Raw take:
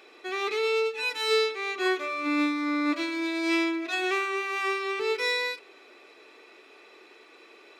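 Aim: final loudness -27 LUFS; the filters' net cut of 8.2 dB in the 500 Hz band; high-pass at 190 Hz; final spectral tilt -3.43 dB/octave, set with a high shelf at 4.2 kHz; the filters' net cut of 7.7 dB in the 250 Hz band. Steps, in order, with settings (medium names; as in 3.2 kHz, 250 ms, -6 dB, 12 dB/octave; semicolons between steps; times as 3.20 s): high-pass 190 Hz; peaking EQ 250 Hz -6 dB; peaking EQ 500 Hz -8 dB; treble shelf 4.2 kHz +7 dB; trim +1 dB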